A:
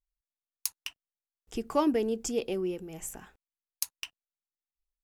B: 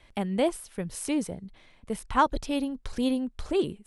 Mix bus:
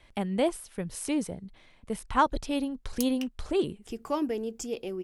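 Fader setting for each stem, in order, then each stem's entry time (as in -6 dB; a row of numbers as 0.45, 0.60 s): -3.5, -1.0 dB; 2.35, 0.00 s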